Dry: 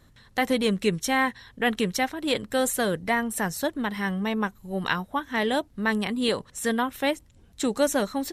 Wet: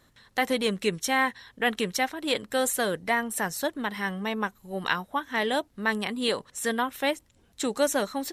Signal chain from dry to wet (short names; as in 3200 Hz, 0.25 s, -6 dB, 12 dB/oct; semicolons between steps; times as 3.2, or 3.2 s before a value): low shelf 210 Hz -10.5 dB